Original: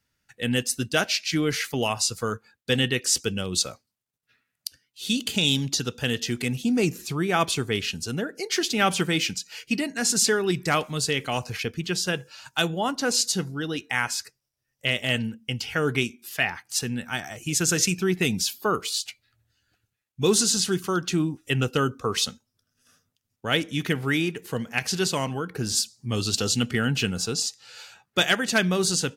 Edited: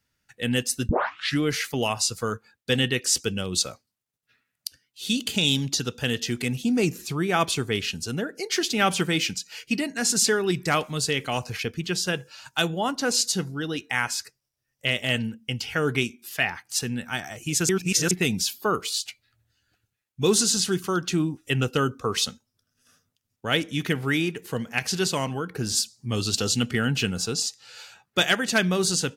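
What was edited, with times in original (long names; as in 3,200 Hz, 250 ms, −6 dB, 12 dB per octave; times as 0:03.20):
0:00.89: tape start 0.51 s
0:17.69–0:18.11: reverse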